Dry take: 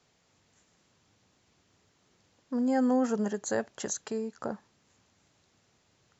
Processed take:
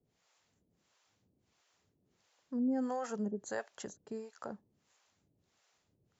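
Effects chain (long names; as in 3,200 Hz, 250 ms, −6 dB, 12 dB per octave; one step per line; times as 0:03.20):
two-band tremolo in antiphase 1.5 Hz, depth 100%, crossover 510 Hz
level −3 dB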